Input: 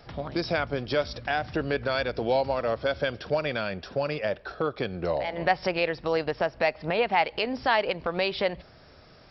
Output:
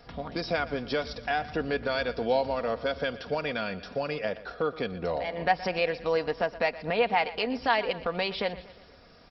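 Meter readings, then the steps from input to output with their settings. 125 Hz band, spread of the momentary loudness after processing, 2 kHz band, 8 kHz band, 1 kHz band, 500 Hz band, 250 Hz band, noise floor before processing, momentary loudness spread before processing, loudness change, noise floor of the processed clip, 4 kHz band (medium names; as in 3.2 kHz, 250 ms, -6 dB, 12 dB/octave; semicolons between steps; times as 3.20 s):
-4.5 dB, 6 LU, -1.5 dB, no reading, -1.0 dB, -2.0 dB, -2.0 dB, -53 dBFS, 6 LU, -1.5 dB, -54 dBFS, -1.5 dB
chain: comb 4.2 ms, depth 44%; feedback delay 120 ms, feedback 53%, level -17 dB; trim -2.5 dB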